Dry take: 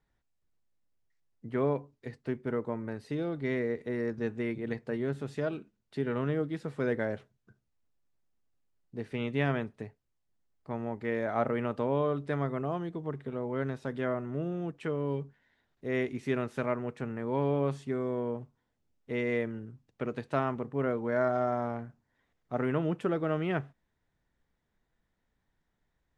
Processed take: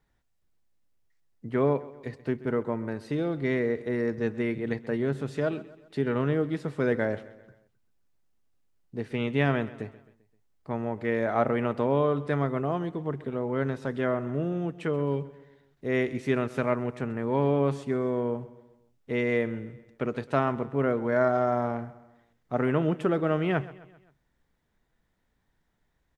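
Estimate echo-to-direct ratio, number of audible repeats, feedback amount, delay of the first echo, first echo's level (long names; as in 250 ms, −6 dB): −17.0 dB, 3, 49%, 131 ms, −18.0 dB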